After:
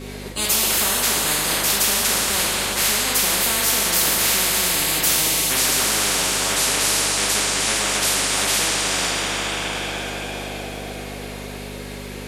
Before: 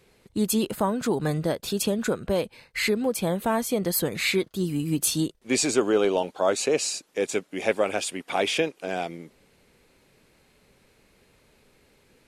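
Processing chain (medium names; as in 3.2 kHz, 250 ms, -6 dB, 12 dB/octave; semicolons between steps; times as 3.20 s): two-slope reverb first 0.54 s, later 4.7 s, from -18 dB, DRR -7.5 dB; hum 50 Hz, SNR 18 dB; spectrum-flattening compressor 10:1; trim -3 dB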